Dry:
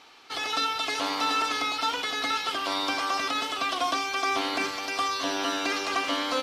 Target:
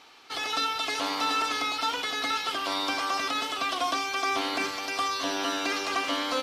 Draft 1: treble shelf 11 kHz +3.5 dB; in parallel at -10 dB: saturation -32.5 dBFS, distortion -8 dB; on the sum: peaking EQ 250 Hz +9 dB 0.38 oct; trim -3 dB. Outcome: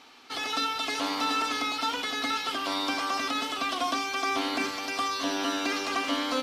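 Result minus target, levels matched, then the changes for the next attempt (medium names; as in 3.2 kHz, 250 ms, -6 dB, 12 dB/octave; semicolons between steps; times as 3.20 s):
saturation: distortion +11 dB; 250 Hz band +4.0 dB
change: saturation -21 dBFS, distortion -19 dB; remove: peaking EQ 250 Hz +9 dB 0.38 oct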